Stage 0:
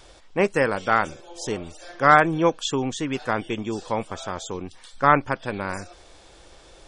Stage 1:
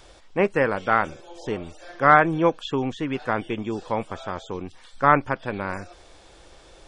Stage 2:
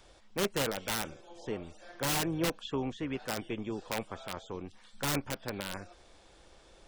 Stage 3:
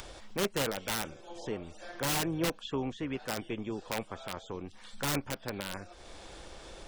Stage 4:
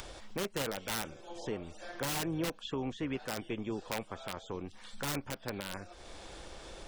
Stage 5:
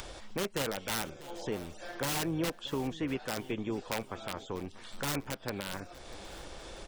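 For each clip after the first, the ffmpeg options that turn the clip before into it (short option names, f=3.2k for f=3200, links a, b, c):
-filter_complex "[0:a]acrossover=split=3400[a][b];[b]acompressor=threshold=-55dB:ratio=4:attack=1:release=60[c];[a][c]amix=inputs=2:normalize=0"
-filter_complex "[0:a]acrossover=split=380[a][b];[b]aeval=exprs='(mod(7.5*val(0)+1,2)-1)/7.5':c=same[c];[a][c]amix=inputs=2:normalize=0,tremolo=f=210:d=0.333,volume=-7dB"
-af "acompressor=mode=upward:threshold=-36dB:ratio=2.5"
-af "alimiter=level_in=1dB:limit=-24dB:level=0:latency=1:release=197,volume=-1dB"
-af "aecho=1:1:643|1286|1929:0.126|0.0466|0.0172,volume=2dB"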